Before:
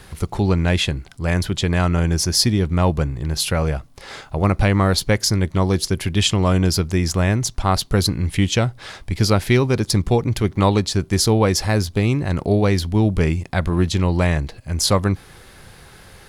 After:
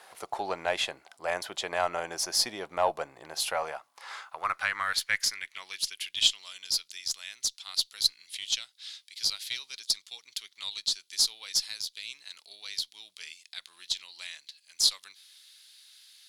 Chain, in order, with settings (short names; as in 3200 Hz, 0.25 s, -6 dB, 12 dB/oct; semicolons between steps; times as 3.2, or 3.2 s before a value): high-pass sweep 690 Hz -> 3800 Hz, 3.39–6.41; added harmonics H 8 -35 dB, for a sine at 1.5 dBFS; gain -8.5 dB